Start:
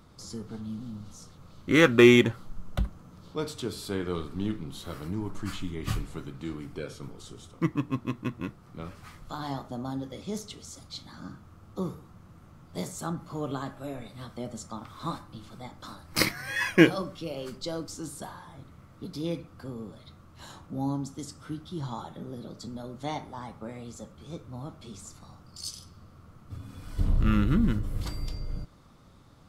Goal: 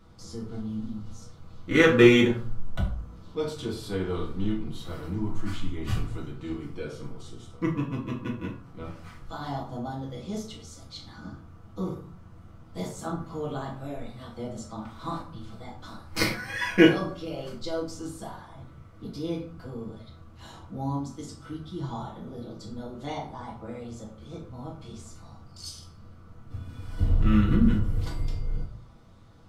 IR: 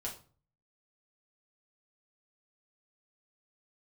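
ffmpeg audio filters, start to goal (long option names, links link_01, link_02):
-filter_complex "[0:a]highshelf=frequency=6900:gain=-6.5,bandreject=frequency=55.27:width_type=h:width=4,bandreject=frequency=110.54:width_type=h:width=4,bandreject=frequency=165.81:width_type=h:width=4,bandreject=frequency=221.08:width_type=h:width=4,bandreject=frequency=276.35:width_type=h:width=4,bandreject=frequency=331.62:width_type=h:width=4,bandreject=frequency=386.89:width_type=h:width=4,bandreject=frequency=442.16:width_type=h:width=4,bandreject=frequency=497.43:width_type=h:width=4,bandreject=frequency=552.7:width_type=h:width=4,bandreject=frequency=607.97:width_type=h:width=4,bandreject=frequency=663.24:width_type=h:width=4,bandreject=frequency=718.51:width_type=h:width=4,bandreject=frequency=773.78:width_type=h:width=4,bandreject=frequency=829.05:width_type=h:width=4,bandreject=frequency=884.32:width_type=h:width=4,bandreject=frequency=939.59:width_type=h:width=4,bandreject=frequency=994.86:width_type=h:width=4,bandreject=frequency=1050.13:width_type=h:width=4,bandreject=frequency=1105.4:width_type=h:width=4,bandreject=frequency=1160.67:width_type=h:width=4,bandreject=frequency=1215.94:width_type=h:width=4,bandreject=frequency=1271.21:width_type=h:width=4,bandreject=frequency=1326.48:width_type=h:width=4,bandreject=frequency=1381.75:width_type=h:width=4,bandreject=frequency=1437.02:width_type=h:width=4,bandreject=frequency=1492.29:width_type=h:width=4,bandreject=frequency=1547.56:width_type=h:width=4,bandreject=frequency=1602.83:width_type=h:width=4,bandreject=frequency=1658.1:width_type=h:width=4,bandreject=frequency=1713.37:width_type=h:width=4[link_01];[1:a]atrim=start_sample=2205[link_02];[link_01][link_02]afir=irnorm=-1:irlink=0,volume=1dB"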